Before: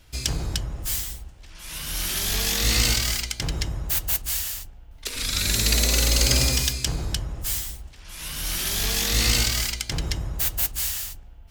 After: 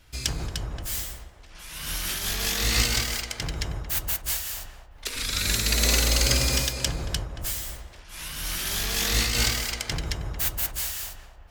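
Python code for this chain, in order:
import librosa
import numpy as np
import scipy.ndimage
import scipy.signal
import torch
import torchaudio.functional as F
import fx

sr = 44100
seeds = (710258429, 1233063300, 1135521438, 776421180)

y = fx.peak_eq(x, sr, hz=1500.0, db=3.5, octaves=1.6)
y = fx.echo_banded(y, sr, ms=227, feedback_pct=59, hz=620.0, wet_db=-4.5)
y = fx.am_noise(y, sr, seeds[0], hz=5.7, depth_pct=60)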